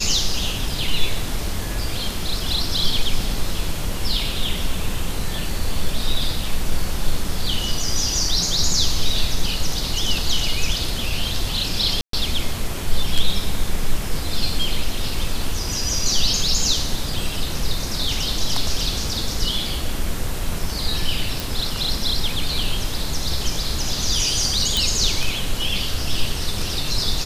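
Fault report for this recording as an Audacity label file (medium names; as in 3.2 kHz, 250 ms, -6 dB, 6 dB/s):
12.010000	12.130000	dropout 123 ms
21.400000	21.400000	pop
24.770000	24.770000	pop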